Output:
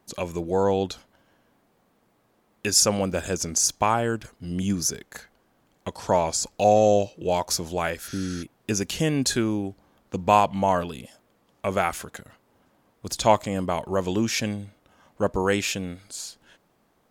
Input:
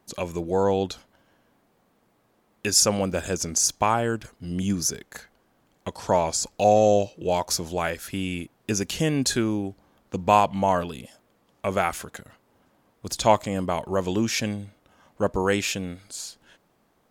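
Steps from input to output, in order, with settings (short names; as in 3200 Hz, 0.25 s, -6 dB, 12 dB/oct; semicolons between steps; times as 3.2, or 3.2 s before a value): spectral repair 8.1–8.4, 610–6700 Hz before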